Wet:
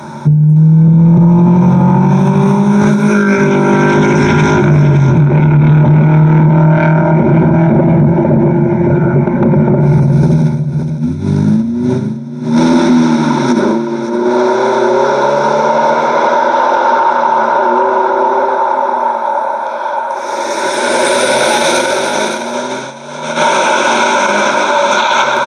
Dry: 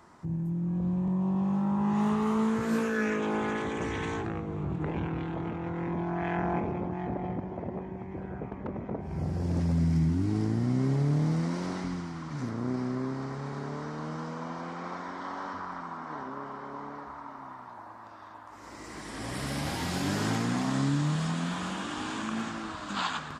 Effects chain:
EQ curve with evenly spaced ripples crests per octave 1.5, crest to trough 14 dB
compressor whose output falls as the input rises −30 dBFS, ratio −0.5
high-pass filter sweep 170 Hz → 520 Hz, 0:10.41–0:13.34
soft clipping −17.5 dBFS, distortion −21 dB
single-tap delay 517 ms −10.5 dB
wrong playback speed 48 kHz file played as 44.1 kHz
boost into a limiter +23 dB
level −1 dB

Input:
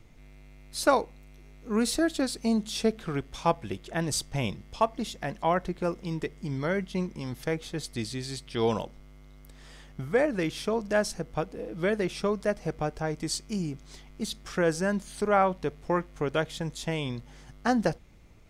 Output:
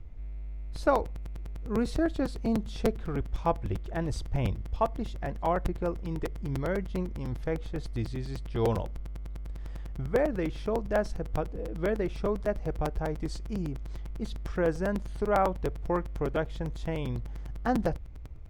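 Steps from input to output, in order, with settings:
low-pass filter 1,000 Hz 6 dB per octave
low shelf with overshoot 110 Hz +12 dB, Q 1.5
regular buffer underruns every 0.10 s, samples 256, repeat, from 0:00.75

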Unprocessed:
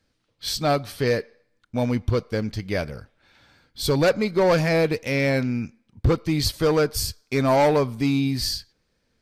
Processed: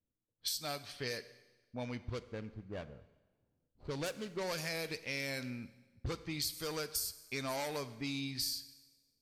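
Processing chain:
0:02.00–0:04.46: running median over 25 samples
first-order pre-emphasis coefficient 0.9
low-pass that shuts in the quiet parts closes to 410 Hz, open at −32 dBFS
downward compressor, threshold −37 dBFS, peak gain reduction 12.5 dB
four-comb reverb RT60 1.2 s, combs from 32 ms, DRR 14.5 dB
level +2 dB

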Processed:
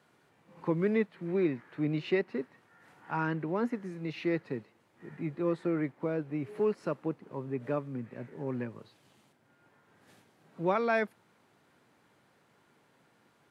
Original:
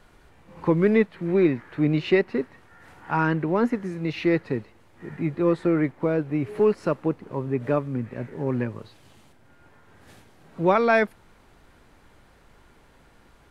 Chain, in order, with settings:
high-pass filter 120 Hz 24 dB per octave
level −9 dB

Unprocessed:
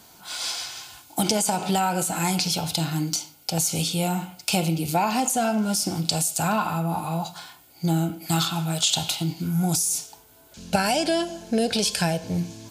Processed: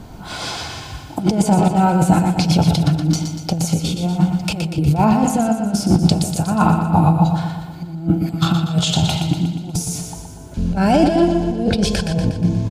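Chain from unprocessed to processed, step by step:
spectral tilt −4.5 dB per octave
compressor whose output falls as the input rises −20 dBFS, ratio −0.5
on a send: repeating echo 120 ms, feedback 56%, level −7 dB
on the sum: level +4.5 dB

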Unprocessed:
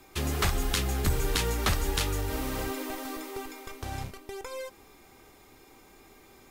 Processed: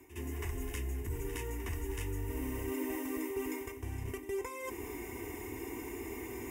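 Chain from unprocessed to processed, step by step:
high-pass filter 48 Hz 12 dB per octave
low-shelf EQ 250 Hz +9.5 dB
notch filter 3,400 Hz, Q 11
reversed playback
downward compressor 5 to 1, threshold −49 dBFS, peak gain reduction 29.5 dB
reversed playback
phaser with its sweep stopped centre 860 Hz, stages 8
notch comb filter 800 Hz
echo ahead of the sound 62 ms −12 dB
level +15 dB

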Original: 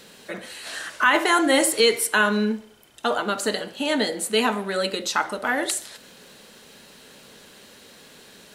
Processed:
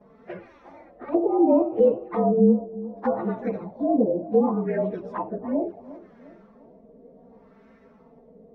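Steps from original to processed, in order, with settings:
partials spread apart or drawn together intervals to 112%
auto-filter low-pass sine 0.68 Hz 530–1,600 Hz
flanger swept by the level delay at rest 5 ms, full sweep at −22.5 dBFS
tilt shelving filter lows +7 dB, about 800 Hz
bucket-brigade delay 352 ms, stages 2,048, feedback 47%, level −17 dB
treble cut that deepens with the level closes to 990 Hz, closed at −18.5 dBFS
high-shelf EQ 7,000 Hz +8.5 dB

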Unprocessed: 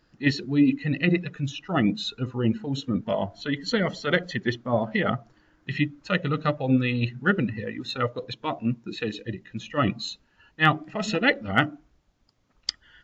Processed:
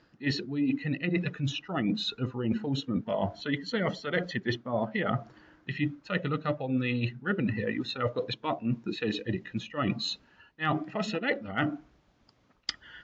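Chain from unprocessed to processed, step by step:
high-pass filter 120 Hz 6 dB per octave
reversed playback
downward compressor 6 to 1, threshold −33 dBFS, peak gain reduction 17 dB
reversed playback
high-frequency loss of the air 95 metres
level +6.5 dB

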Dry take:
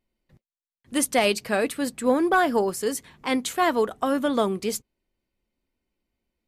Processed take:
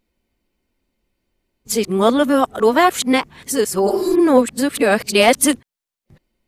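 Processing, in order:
played backwards from end to start
healed spectral selection 0:03.90–0:04.17, 210–3,800 Hz both
level +8.5 dB

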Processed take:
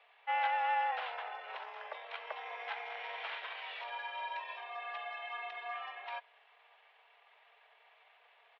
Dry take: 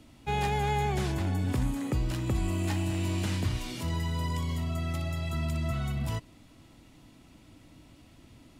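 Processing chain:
pitch shifter −5.5 semitones
single-sideband voice off tune +230 Hz 430–3,200 Hz

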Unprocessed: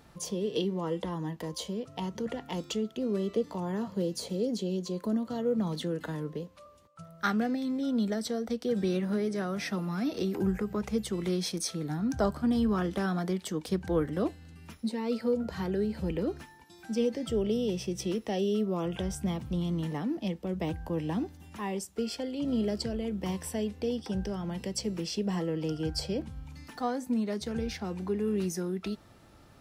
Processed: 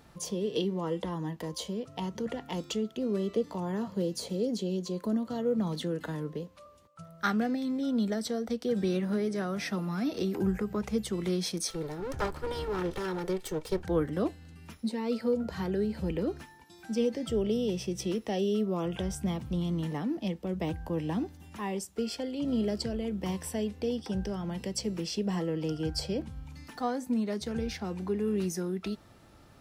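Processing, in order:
0:11.70–0:13.85: lower of the sound and its delayed copy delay 2.2 ms

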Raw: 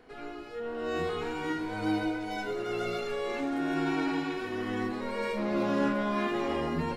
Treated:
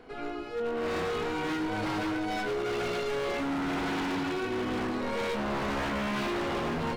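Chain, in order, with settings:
high-shelf EQ 6,400 Hz −6.5 dB
notch filter 1,800 Hz, Q 11
in parallel at −2 dB: brickwall limiter −27.5 dBFS, peak gain reduction 9 dB
on the sum: wave folding −26 dBFS

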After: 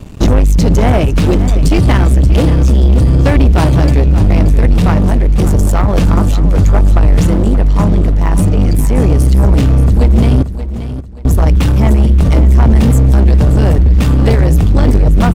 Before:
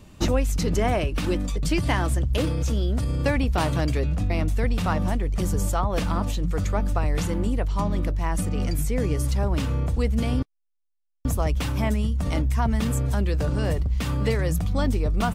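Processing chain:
low-shelf EQ 370 Hz +10 dB
leveller curve on the samples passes 3
repeating echo 579 ms, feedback 32%, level −12 dB

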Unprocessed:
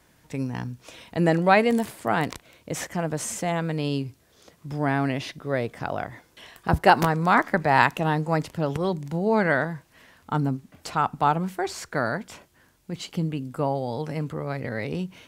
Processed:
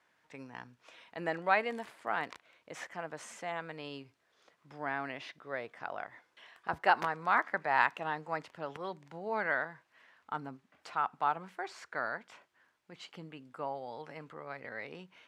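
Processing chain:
resonant band-pass 1,500 Hz, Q 0.75
level −7 dB

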